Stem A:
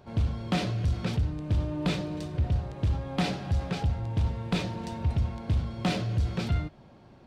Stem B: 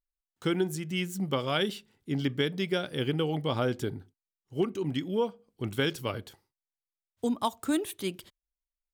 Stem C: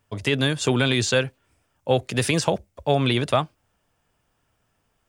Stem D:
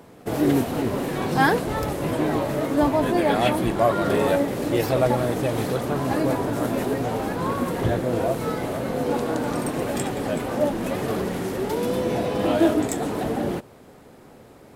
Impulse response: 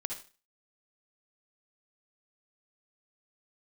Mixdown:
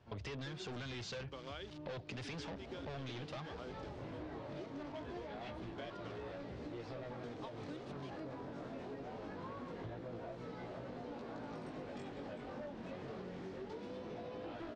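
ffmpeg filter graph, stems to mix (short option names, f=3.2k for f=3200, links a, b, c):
-filter_complex "[0:a]alimiter=level_in=3dB:limit=-24dB:level=0:latency=1,volume=-3dB,volume=-14.5dB[a];[1:a]highpass=f=250:w=0.5412,highpass=f=250:w=1.3066,acrusher=bits=5:mix=0:aa=0.000001,volume=-12dB[b];[2:a]asoftclip=type=tanh:threshold=-29.5dB,volume=-1dB,asplit=2[c][d];[3:a]volume=19dB,asoftclip=hard,volume=-19dB,flanger=delay=16.5:depth=5.8:speed=0.23,adelay=2000,volume=-11.5dB[e];[d]apad=whole_len=738910[f];[e][f]sidechaincompress=threshold=-38dB:ratio=8:attack=16:release=438[g];[a][b][c][g]amix=inputs=4:normalize=0,lowpass=f=5.4k:w=0.5412,lowpass=f=5.4k:w=1.3066,acompressor=threshold=-43dB:ratio=10"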